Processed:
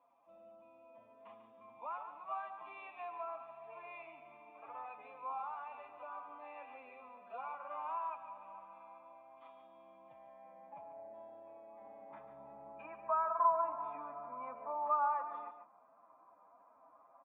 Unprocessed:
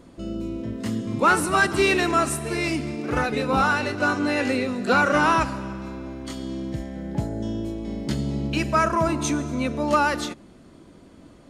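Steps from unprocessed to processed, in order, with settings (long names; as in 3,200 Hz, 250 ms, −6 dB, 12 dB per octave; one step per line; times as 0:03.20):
downward compressor 3 to 1, threshold −26 dBFS, peak gain reduction 9.5 dB
band-pass filter sweep 3,100 Hz → 1,500 Hz, 0:06.51–0:08.71
phase-vocoder stretch with locked phases 1.5×
formant resonators in series a
notch comb filter 370 Hz
on a send: single-tap delay 143 ms −10 dB
on the sum: level +17 dB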